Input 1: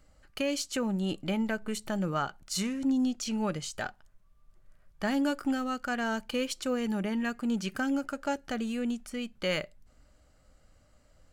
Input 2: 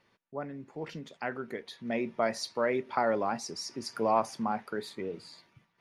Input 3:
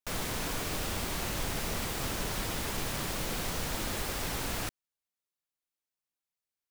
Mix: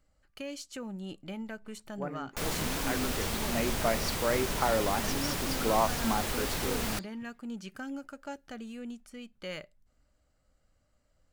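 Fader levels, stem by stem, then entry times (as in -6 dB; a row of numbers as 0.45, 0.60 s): -9.5, -0.5, +1.0 dB; 0.00, 1.65, 2.30 s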